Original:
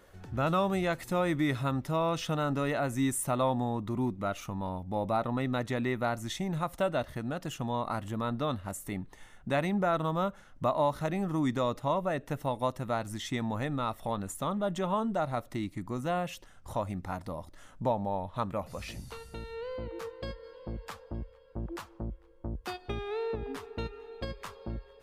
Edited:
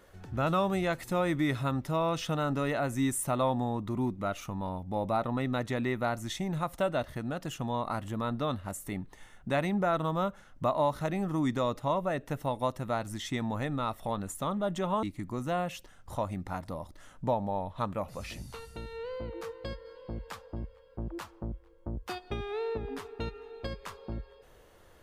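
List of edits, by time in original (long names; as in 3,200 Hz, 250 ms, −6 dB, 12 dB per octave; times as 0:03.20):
0:15.03–0:15.61: remove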